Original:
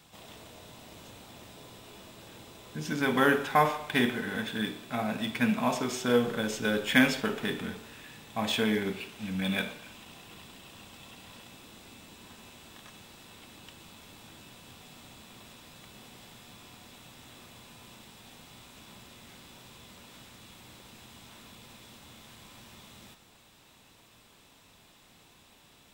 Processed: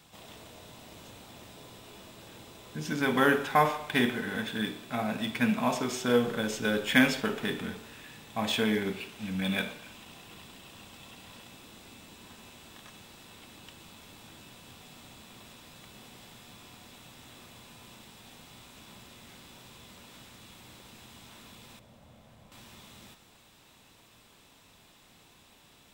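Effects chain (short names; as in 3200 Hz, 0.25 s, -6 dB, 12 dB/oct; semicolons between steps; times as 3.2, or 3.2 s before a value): 21.79–22.52 EQ curve 180 Hz 0 dB, 370 Hz -8 dB, 590 Hz +3 dB, 950 Hz -6 dB, 4100 Hz -13 dB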